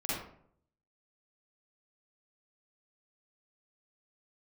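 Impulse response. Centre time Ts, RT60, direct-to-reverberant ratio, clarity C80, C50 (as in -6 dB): 70 ms, 0.65 s, -9.0 dB, 3.5 dB, -3.0 dB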